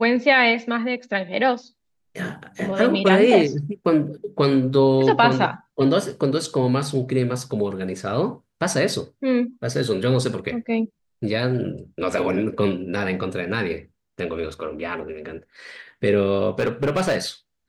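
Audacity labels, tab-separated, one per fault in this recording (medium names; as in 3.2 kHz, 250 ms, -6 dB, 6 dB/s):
16.590000	17.160000	clipped -16.5 dBFS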